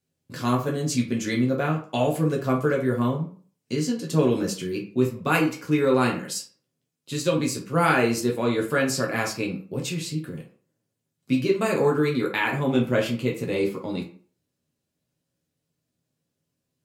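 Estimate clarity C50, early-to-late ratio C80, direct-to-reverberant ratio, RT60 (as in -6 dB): 8.5 dB, 14.0 dB, -1.0 dB, 0.45 s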